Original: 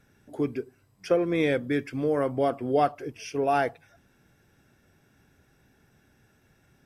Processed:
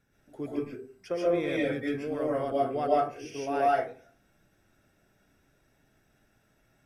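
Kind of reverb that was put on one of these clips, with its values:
comb and all-pass reverb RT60 0.4 s, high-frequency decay 0.45×, pre-delay 95 ms, DRR −5.5 dB
level −9.5 dB

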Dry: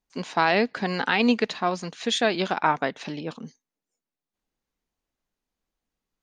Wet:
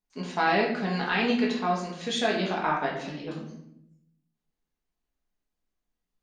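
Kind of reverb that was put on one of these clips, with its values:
rectangular room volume 180 cubic metres, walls mixed, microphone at 1.4 metres
level −8 dB

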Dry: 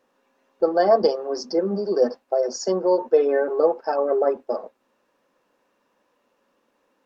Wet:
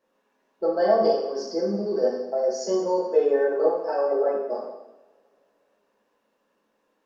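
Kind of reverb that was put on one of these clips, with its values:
coupled-rooms reverb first 0.86 s, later 3.1 s, from −28 dB, DRR −5 dB
level −9.5 dB

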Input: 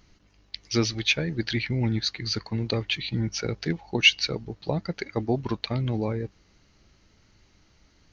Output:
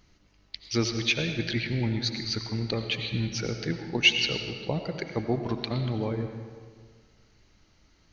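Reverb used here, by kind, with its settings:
comb and all-pass reverb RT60 1.7 s, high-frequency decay 0.8×, pre-delay 50 ms, DRR 6 dB
level −2.5 dB

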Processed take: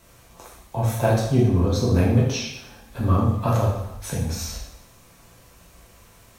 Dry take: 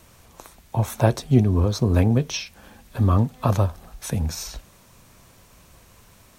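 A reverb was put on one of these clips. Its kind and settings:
dense smooth reverb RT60 0.82 s, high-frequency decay 0.9×, DRR −4.5 dB
level −4.5 dB

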